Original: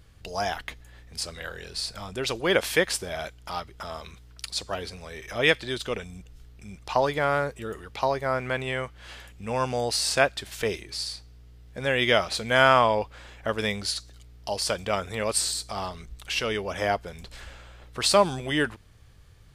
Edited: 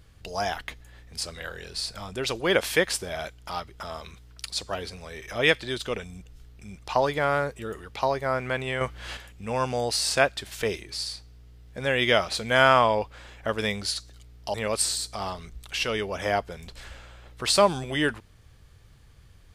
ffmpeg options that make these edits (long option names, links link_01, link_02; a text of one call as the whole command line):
ffmpeg -i in.wav -filter_complex "[0:a]asplit=4[link_01][link_02][link_03][link_04];[link_01]atrim=end=8.812[link_05];[link_02]atrim=start=8.808:end=9.172,asetpts=PTS-STARTPTS,volume=6.5dB[link_06];[link_03]atrim=start=9.168:end=14.542[link_07];[link_04]atrim=start=15.098[link_08];[link_05][link_06]acrossfade=duration=0.004:curve1=hsin:curve2=hsin[link_09];[link_09][link_07]acrossfade=duration=0.004:curve1=hsin:curve2=hsin[link_10];[link_10][link_08]acrossfade=duration=0.004:curve1=hsin:curve2=hsin" out.wav